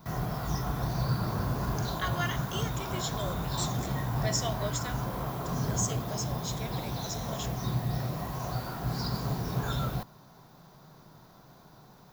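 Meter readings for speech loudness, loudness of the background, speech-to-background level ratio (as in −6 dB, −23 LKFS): −37.0 LKFS, −33.0 LKFS, −4.0 dB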